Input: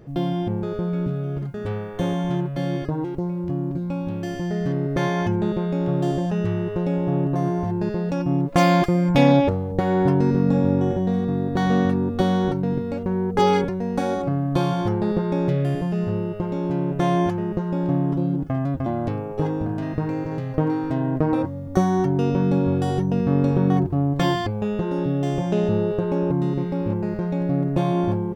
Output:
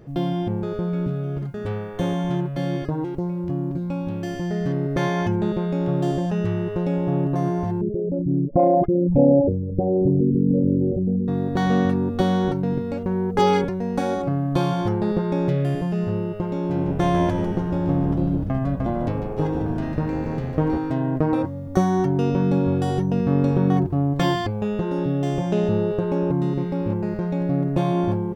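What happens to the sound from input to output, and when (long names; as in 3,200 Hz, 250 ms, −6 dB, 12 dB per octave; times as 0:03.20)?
0:07.81–0:11.28: spectral envelope exaggerated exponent 3
0:16.57–0:20.78: echo with shifted repeats 148 ms, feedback 55%, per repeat −81 Hz, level −8 dB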